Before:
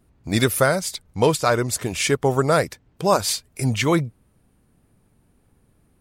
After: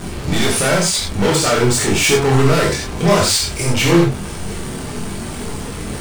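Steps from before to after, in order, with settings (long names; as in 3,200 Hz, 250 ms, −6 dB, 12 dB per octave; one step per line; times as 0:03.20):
converter with a step at zero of −30 dBFS
Chebyshev low-pass filter 9,200 Hz, order 4
leveller curve on the samples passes 5
multi-voice chorus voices 4, 0.44 Hz, delay 25 ms, depth 4.6 ms
reverb whose tail is shaped and stops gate 110 ms flat, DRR −0.5 dB
level −6 dB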